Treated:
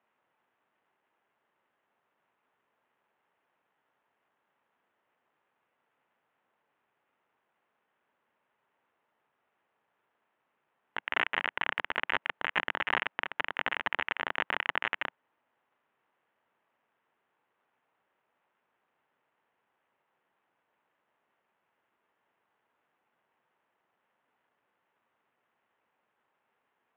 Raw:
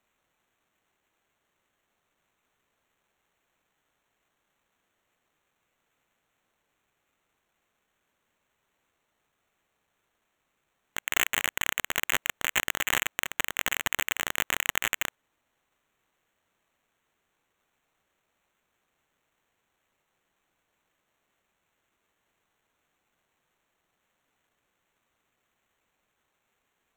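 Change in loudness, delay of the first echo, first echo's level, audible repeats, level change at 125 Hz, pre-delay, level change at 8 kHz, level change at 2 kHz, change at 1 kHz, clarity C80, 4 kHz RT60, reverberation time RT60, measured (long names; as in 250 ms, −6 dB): −4.0 dB, no echo audible, no echo audible, no echo audible, −7.5 dB, no reverb audible, below −35 dB, −2.0 dB, +1.5 dB, no reverb audible, no reverb audible, no reverb audible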